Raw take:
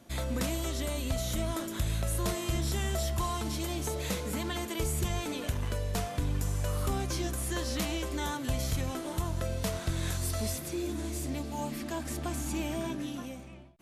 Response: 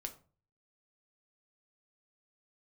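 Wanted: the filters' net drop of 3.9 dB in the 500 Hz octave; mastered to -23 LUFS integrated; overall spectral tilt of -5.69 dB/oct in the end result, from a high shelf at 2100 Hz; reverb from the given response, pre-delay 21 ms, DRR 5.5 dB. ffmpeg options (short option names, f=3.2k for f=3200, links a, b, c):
-filter_complex "[0:a]equalizer=f=500:t=o:g=-5,highshelf=f=2.1k:g=-7,asplit=2[a][b];[1:a]atrim=start_sample=2205,adelay=21[c];[b][c]afir=irnorm=-1:irlink=0,volume=-3dB[d];[a][d]amix=inputs=2:normalize=0,volume=11dB"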